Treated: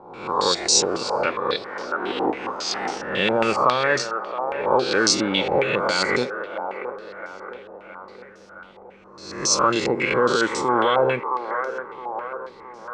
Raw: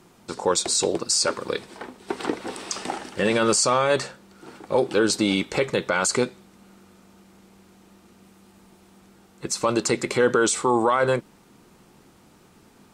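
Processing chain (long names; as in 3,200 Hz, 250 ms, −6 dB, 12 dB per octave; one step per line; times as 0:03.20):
peak hold with a rise ahead of every peak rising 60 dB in 0.82 s
delay with a band-pass on its return 667 ms, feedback 53%, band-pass 840 Hz, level −7 dB
low-pass on a step sequencer 7.3 Hz 830–5,700 Hz
level −3.5 dB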